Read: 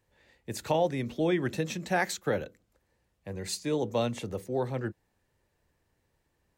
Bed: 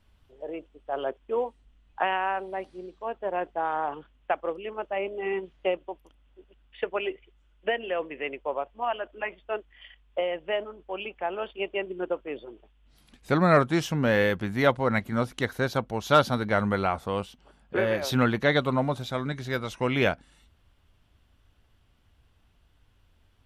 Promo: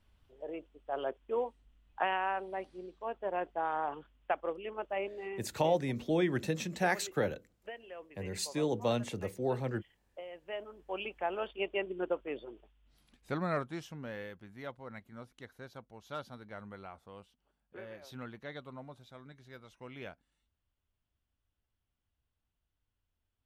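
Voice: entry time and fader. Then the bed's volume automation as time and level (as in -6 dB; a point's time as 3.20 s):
4.90 s, -2.5 dB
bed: 5.00 s -5.5 dB
5.58 s -18 dB
10.25 s -18 dB
10.93 s -4 dB
12.53 s -4 dB
14.34 s -22 dB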